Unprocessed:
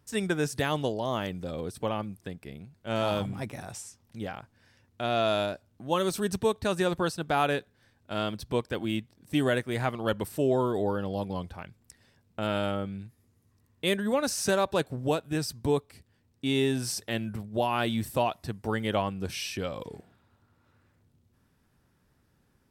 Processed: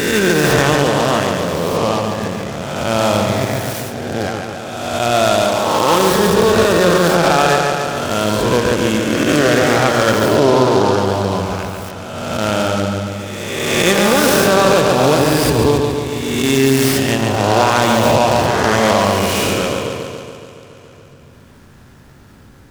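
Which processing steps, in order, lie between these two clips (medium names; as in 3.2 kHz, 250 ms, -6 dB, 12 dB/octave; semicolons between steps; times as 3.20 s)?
reverse spectral sustain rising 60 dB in 1.77 s; on a send: bucket-brigade echo 141 ms, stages 4096, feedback 67%, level -4.5 dB; on the sum: upward compressor, threshold -43 dBFS; loudness maximiser +11.5 dB; delay time shaken by noise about 3.6 kHz, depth 0.038 ms; trim -1 dB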